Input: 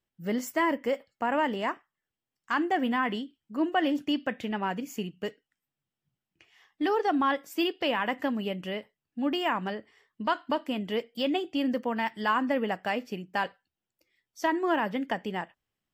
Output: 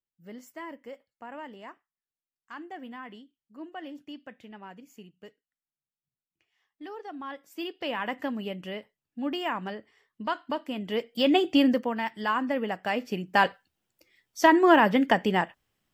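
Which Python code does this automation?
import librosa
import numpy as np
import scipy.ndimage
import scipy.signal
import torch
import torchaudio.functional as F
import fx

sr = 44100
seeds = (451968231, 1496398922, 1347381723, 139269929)

y = fx.gain(x, sr, db=fx.line((7.14, -14.5), (8.02, -2.5), (10.74, -2.5), (11.53, 9.5), (11.96, -1.0), (12.75, -1.0), (13.45, 8.5)))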